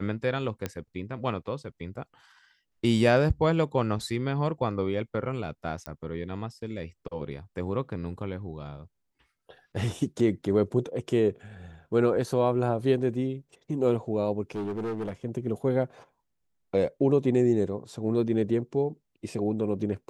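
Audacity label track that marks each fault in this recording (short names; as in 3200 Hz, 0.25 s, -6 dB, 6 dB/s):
0.660000	0.660000	pop -16 dBFS
5.860000	5.860000	pop -19 dBFS
14.510000	15.130000	clipped -28.5 dBFS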